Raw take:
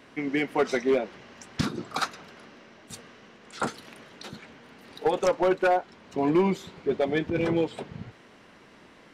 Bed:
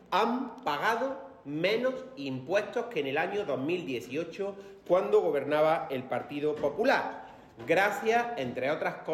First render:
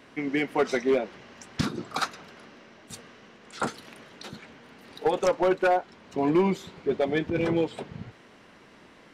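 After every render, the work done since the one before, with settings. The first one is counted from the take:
no processing that can be heard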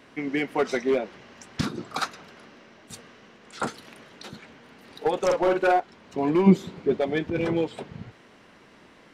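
0:05.25–0:05.80: double-tracking delay 47 ms −3.5 dB
0:06.46–0:06.97: parametric band 210 Hz +13.5 dB → +3.5 dB 2.4 octaves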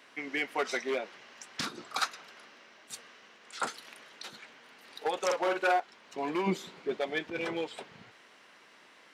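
high-pass filter 1,200 Hz 6 dB per octave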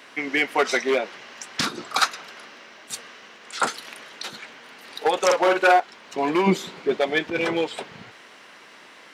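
level +10.5 dB

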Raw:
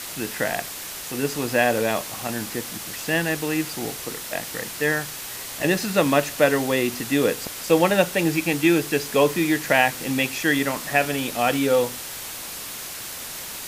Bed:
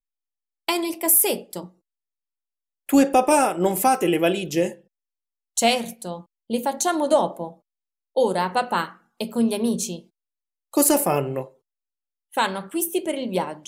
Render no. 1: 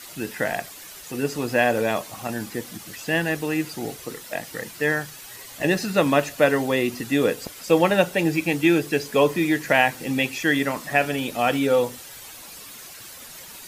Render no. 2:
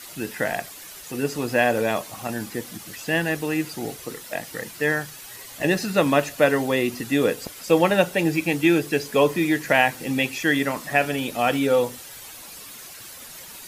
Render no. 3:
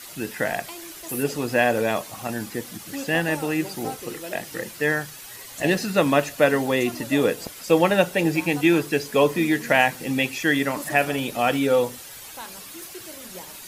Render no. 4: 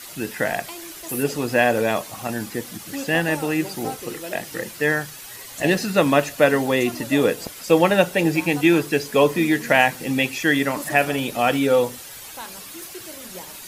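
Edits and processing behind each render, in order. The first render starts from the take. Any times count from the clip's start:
broadband denoise 10 dB, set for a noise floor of −35 dBFS
parametric band 11,000 Hz +2 dB 0.32 octaves
mix in bed −17.5 dB
level +2 dB

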